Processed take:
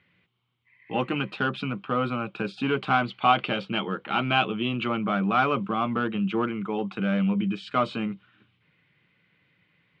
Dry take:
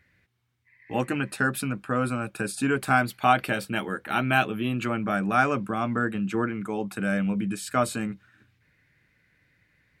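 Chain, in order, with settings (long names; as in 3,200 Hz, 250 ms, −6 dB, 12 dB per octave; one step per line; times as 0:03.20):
in parallel at −11.5 dB: wave folding −21 dBFS
on the sum: loudspeaker in its box 150–3,700 Hz, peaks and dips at 170 Hz +5 dB, 270 Hz −4 dB, 640 Hz −3 dB, 1,100 Hz +4 dB, 1,700 Hz −10 dB, 3,100 Hz +8 dB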